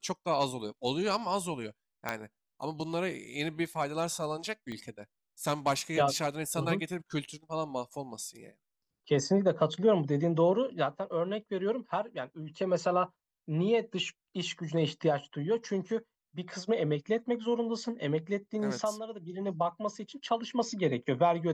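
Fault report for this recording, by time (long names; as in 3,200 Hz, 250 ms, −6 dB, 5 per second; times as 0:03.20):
0:02.09: click −16 dBFS
0:04.72: click −28 dBFS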